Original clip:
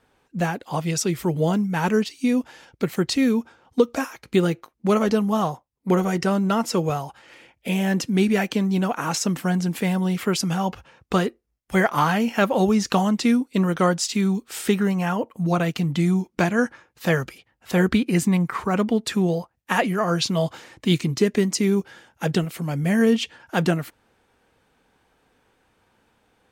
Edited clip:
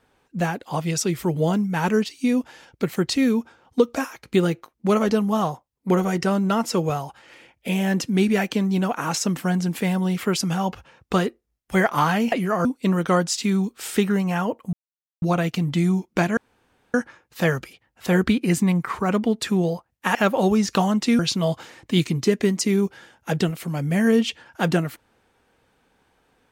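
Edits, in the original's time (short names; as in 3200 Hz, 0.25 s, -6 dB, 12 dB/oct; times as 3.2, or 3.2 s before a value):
12.32–13.36 swap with 19.8–20.13
15.44 insert silence 0.49 s
16.59 insert room tone 0.57 s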